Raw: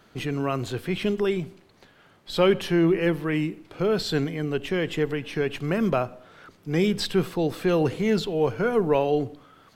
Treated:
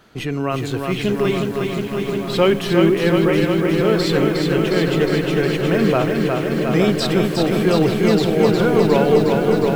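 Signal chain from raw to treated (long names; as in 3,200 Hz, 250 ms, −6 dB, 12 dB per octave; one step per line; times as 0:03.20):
feedback echo with a low-pass in the loop 873 ms, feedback 65%, low-pass 1,800 Hz, level −6 dB
feedback echo at a low word length 360 ms, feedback 80%, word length 8 bits, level −4 dB
level +4.5 dB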